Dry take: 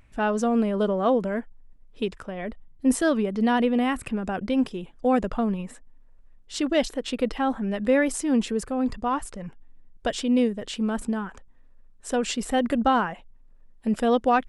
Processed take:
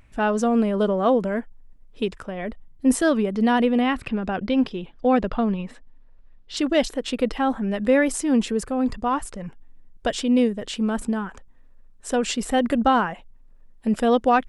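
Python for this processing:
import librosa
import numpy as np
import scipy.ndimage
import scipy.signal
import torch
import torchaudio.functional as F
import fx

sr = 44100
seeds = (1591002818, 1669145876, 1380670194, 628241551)

y = fx.high_shelf_res(x, sr, hz=6000.0, db=-11.0, q=1.5, at=(3.81, 6.57))
y = F.gain(torch.from_numpy(y), 2.5).numpy()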